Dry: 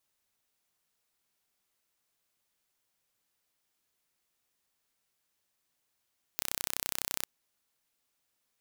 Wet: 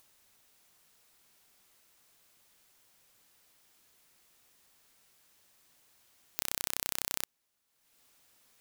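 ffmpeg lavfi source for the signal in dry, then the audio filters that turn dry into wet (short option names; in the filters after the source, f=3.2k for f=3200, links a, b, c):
-f lavfi -i "aevalsrc='0.562*eq(mod(n,1382),0)':d=0.86:s=44100"
-af "acompressor=mode=upward:threshold=-53dB:ratio=2.5"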